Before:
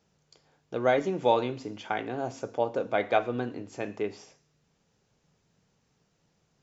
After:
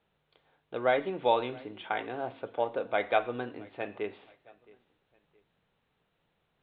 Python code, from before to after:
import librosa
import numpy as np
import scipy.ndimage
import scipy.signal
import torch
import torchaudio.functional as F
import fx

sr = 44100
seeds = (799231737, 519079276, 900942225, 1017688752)

y = scipy.signal.sosfilt(scipy.signal.butter(16, 3900.0, 'lowpass', fs=sr, output='sos'), x)
y = fx.peak_eq(y, sr, hz=150.0, db=-8.5, octaves=2.7)
y = fx.echo_feedback(y, sr, ms=669, feedback_pct=34, wet_db=-23.5)